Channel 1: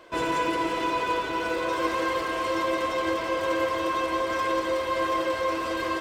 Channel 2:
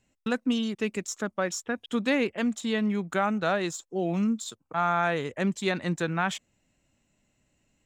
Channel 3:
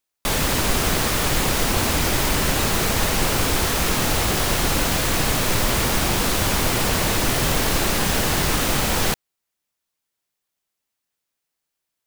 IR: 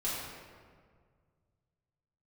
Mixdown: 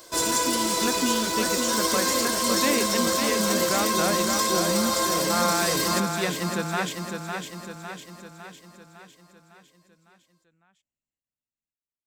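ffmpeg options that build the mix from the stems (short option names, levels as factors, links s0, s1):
-filter_complex "[0:a]aexciter=amount=10.9:drive=4.4:freq=4100,volume=0.891,asplit=2[s0][s1];[s1]volume=0.316[s2];[1:a]highshelf=f=4000:g=5,volume=1.26,asplit=2[s3][s4];[s4]volume=0.668[s5];[s3]alimiter=level_in=1.26:limit=0.0631:level=0:latency=1,volume=0.794,volume=1[s6];[s2][s5]amix=inputs=2:normalize=0,aecho=0:1:555|1110|1665|2220|2775|3330|3885|4440:1|0.54|0.292|0.157|0.085|0.0459|0.0248|0.0134[s7];[s0][s6][s7]amix=inputs=3:normalize=0"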